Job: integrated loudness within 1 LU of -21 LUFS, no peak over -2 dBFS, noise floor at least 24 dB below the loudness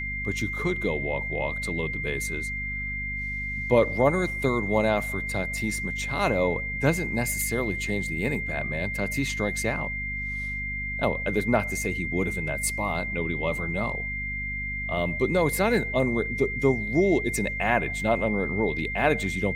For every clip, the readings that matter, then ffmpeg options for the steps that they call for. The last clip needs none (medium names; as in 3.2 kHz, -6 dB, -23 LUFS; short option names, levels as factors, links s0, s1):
hum 50 Hz; highest harmonic 250 Hz; hum level -34 dBFS; steady tone 2.1 kHz; tone level -30 dBFS; loudness -26.5 LUFS; peak level -7.0 dBFS; loudness target -21.0 LUFS
-> -af "bandreject=f=50:t=h:w=4,bandreject=f=100:t=h:w=4,bandreject=f=150:t=h:w=4,bandreject=f=200:t=h:w=4,bandreject=f=250:t=h:w=4"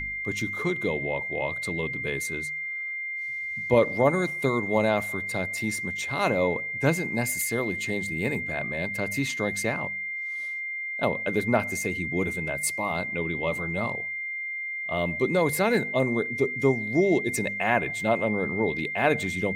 hum not found; steady tone 2.1 kHz; tone level -30 dBFS
-> -af "bandreject=f=2100:w=30"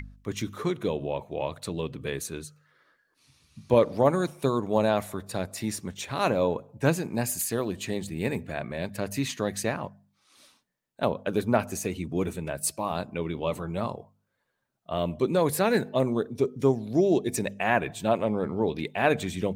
steady tone not found; loudness -28.0 LUFS; peak level -7.5 dBFS; loudness target -21.0 LUFS
-> -af "volume=2.24,alimiter=limit=0.794:level=0:latency=1"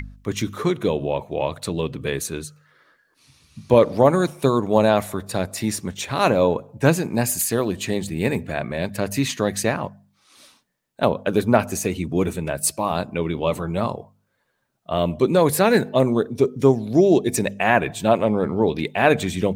loudness -21.0 LUFS; peak level -2.0 dBFS; noise floor -69 dBFS